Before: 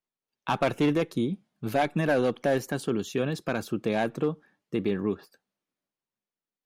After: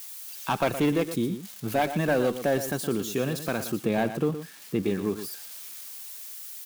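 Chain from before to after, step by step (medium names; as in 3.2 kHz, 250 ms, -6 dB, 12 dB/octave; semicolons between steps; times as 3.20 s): zero-crossing glitches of -32 dBFS; 3.84–4.83 s: tone controls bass +4 dB, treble -5 dB; delay 117 ms -11 dB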